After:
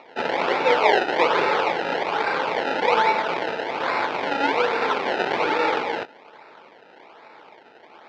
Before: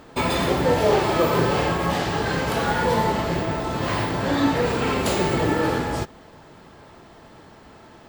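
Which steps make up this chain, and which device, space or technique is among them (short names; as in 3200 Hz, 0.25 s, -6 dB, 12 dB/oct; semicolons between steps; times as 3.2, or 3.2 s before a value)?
circuit-bent sampling toy (decimation with a swept rate 27×, swing 100% 1.2 Hz; speaker cabinet 460–4300 Hz, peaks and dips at 470 Hz +4 dB, 870 Hz +6 dB, 1400 Hz +5 dB, 2300 Hz +6 dB)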